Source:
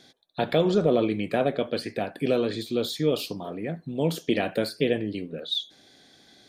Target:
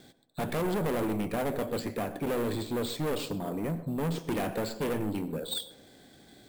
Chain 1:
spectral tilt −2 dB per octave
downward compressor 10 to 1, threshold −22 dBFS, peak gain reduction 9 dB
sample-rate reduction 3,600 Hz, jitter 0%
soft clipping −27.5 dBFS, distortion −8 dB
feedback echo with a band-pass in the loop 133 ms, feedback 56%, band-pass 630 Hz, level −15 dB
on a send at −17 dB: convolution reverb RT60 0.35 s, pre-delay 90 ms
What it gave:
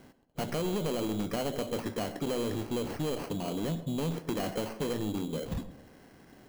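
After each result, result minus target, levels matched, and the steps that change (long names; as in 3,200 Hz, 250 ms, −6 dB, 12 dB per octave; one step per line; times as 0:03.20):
downward compressor: peak gain reduction +9 dB; sample-rate reduction: distortion +8 dB
remove: downward compressor 10 to 1, threshold −22 dBFS, peak gain reduction 9 dB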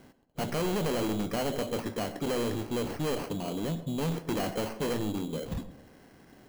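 sample-rate reduction: distortion +8 dB
change: sample-rate reduction 12,000 Hz, jitter 0%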